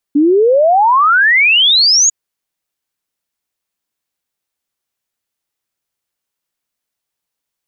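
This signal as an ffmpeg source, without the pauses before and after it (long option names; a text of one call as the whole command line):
ffmpeg -f lavfi -i "aevalsrc='0.473*clip(min(t,1.95-t)/0.01,0,1)*sin(2*PI*280*1.95/log(6900/280)*(exp(log(6900/280)*t/1.95)-1))':duration=1.95:sample_rate=44100" out.wav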